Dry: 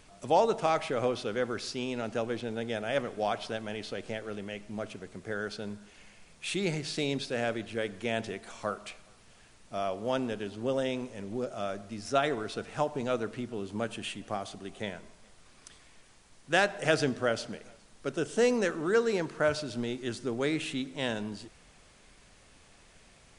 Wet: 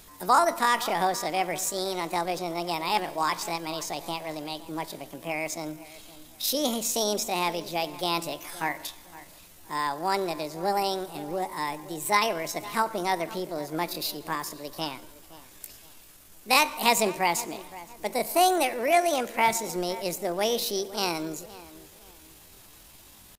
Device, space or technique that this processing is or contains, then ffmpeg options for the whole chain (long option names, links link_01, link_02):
chipmunk voice: -filter_complex "[0:a]asetrate=66075,aresample=44100,atempo=0.66742,highshelf=frequency=6900:gain=11,asplit=2[link_01][link_02];[link_02]adelay=516,lowpass=frequency=2500:poles=1,volume=-17dB,asplit=2[link_03][link_04];[link_04]adelay=516,lowpass=frequency=2500:poles=1,volume=0.33,asplit=2[link_05][link_06];[link_06]adelay=516,lowpass=frequency=2500:poles=1,volume=0.33[link_07];[link_01][link_03][link_05][link_07]amix=inputs=4:normalize=0,volume=3.5dB"